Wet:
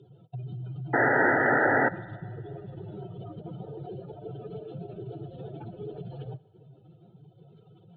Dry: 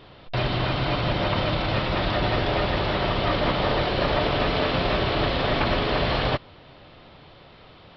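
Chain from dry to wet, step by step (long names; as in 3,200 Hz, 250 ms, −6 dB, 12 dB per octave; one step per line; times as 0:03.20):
expanding power law on the bin magnitudes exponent 2.8
high-pass filter 99 Hz 24 dB per octave
parametric band 860 Hz −9.5 dB 0.49 octaves
downward compressor 6 to 1, threshold −33 dBFS, peak gain reduction 11.5 dB
phaser with its sweep stopped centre 390 Hz, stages 8
sound drawn into the spectrogram noise, 0:00.93–0:01.89, 230–2,000 Hz −21 dBFS
Butterworth band-reject 1,100 Hz, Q 2.7
high-frequency loss of the air 82 metres
feedback echo with a high-pass in the loop 64 ms, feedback 79%, high-pass 170 Hz, level −23 dB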